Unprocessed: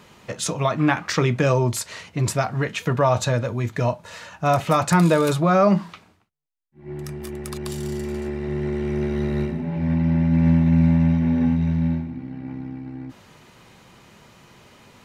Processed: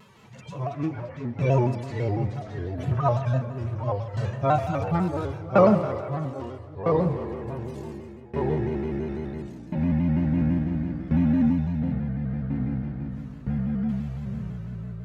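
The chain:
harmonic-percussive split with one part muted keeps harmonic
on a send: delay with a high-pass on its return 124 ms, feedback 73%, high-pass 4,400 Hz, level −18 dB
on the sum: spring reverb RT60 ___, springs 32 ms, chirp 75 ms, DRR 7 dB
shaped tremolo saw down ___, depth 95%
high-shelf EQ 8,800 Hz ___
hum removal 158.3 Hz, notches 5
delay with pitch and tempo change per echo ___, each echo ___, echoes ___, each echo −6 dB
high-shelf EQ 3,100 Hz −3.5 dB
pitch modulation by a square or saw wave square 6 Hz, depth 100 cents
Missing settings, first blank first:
3.7 s, 0.72 Hz, −2.5 dB, 252 ms, −3 semitones, 2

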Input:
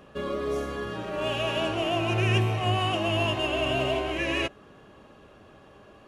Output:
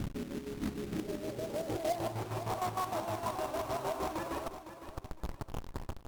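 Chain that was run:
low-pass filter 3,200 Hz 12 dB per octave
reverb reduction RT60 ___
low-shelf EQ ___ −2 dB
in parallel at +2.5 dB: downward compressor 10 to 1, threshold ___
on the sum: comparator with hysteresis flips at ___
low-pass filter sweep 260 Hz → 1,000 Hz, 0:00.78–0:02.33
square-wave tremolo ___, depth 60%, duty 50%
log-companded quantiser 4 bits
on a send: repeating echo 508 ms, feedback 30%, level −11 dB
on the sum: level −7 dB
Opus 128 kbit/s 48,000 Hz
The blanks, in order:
1 s, 150 Hz, −39 dBFS, −40 dBFS, 6.5 Hz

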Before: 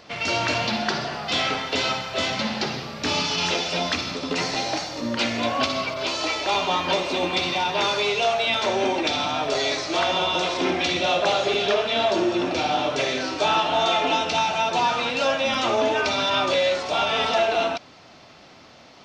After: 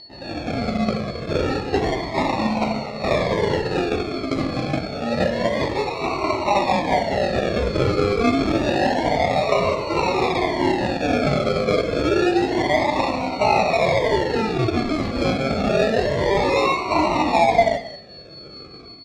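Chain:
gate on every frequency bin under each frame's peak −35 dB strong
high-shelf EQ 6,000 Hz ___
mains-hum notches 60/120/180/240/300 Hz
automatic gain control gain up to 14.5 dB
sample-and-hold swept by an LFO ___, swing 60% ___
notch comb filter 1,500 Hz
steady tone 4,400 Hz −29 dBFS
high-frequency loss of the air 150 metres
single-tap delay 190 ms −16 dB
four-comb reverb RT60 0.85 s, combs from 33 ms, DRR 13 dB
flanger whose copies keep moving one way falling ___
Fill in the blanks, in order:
−6 dB, 37×, 0.28 Hz, 0.47 Hz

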